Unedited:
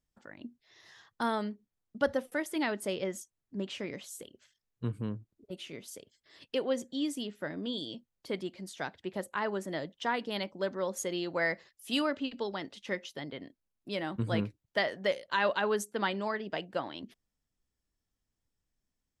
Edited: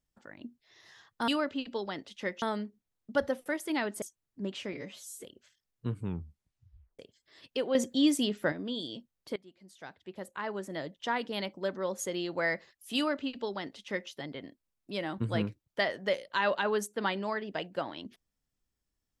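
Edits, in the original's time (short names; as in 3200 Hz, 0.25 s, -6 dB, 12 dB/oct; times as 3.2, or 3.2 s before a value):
2.88–3.17 cut
3.88–4.22 stretch 1.5×
4.95 tape stop 1.02 s
6.73–7.5 gain +8 dB
8.34–10.04 fade in, from -22 dB
11.94–13.08 copy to 1.28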